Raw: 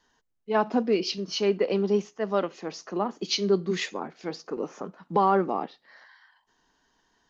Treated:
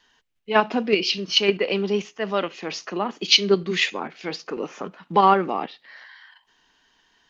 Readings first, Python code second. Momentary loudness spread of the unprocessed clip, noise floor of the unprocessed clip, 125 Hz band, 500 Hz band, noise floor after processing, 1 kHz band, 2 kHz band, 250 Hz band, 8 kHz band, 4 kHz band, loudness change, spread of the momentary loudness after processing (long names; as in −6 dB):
12 LU, −72 dBFS, +2.0 dB, +2.5 dB, −65 dBFS, +5.5 dB, +11.0 dB, +1.5 dB, can't be measured, +11.5 dB, +5.0 dB, 15 LU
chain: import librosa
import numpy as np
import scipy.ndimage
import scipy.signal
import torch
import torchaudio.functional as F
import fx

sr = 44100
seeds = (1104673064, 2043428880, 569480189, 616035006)

p1 = fx.peak_eq(x, sr, hz=2700.0, db=12.5, octaves=1.4)
p2 = fx.level_steps(p1, sr, step_db=19)
p3 = p1 + (p2 * 10.0 ** (0.0 / 20.0))
y = p3 * 10.0 ** (-1.0 / 20.0)